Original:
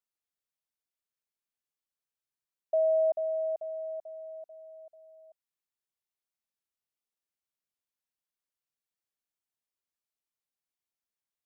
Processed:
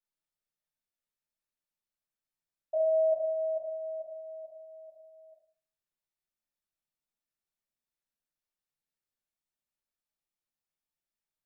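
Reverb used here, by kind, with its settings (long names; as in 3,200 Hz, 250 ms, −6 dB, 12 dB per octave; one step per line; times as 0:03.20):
rectangular room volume 380 cubic metres, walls furnished, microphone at 7.3 metres
level −12.5 dB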